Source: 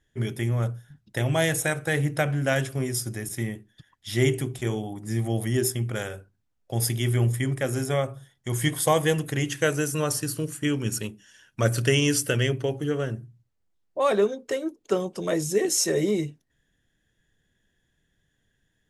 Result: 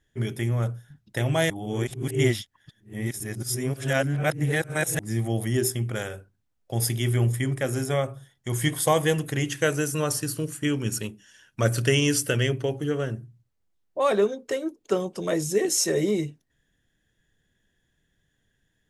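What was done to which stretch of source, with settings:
0:01.50–0:04.99: reverse

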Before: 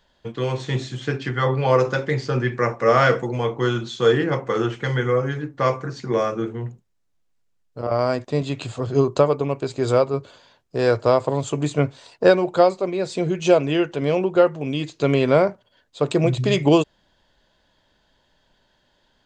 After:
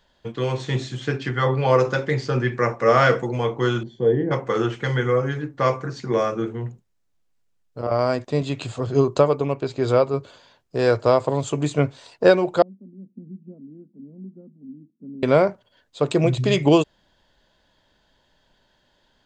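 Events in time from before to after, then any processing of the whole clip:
0:03.83–0:04.31: moving average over 34 samples
0:09.54–0:10.04: low-pass filter 5,300 Hz
0:12.62–0:15.23: flat-topped band-pass 220 Hz, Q 4.6

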